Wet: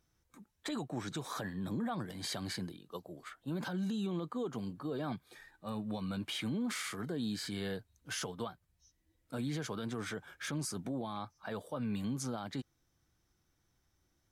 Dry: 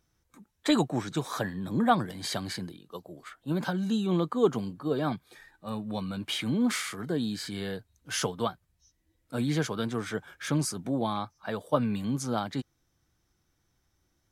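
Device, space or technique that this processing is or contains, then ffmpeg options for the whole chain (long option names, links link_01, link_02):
stacked limiters: -af "alimiter=limit=-16.5dB:level=0:latency=1:release=345,alimiter=limit=-20dB:level=0:latency=1:release=258,alimiter=level_in=2.5dB:limit=-24dB:level=0:latency=1:release=53,volume=-2.5dB,volume=-3dB"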